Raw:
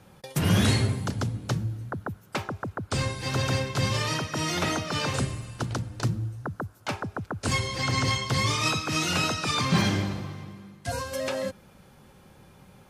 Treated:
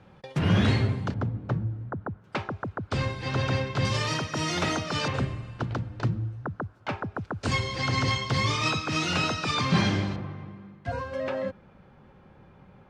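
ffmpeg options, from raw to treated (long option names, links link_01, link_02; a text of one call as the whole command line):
ffmpeg -i in.wav -af "asetnsamples=nb_out_samples=441:pad=0,asendcmd='1.14 lowpass f 1500;2.24 lowpass f 3600;3.85 lowpass f 7000;5.08 lowpass f 2800;7.16 lowpass f 5100;10.16 lowpass f 2100',lowpass=3200" out.wav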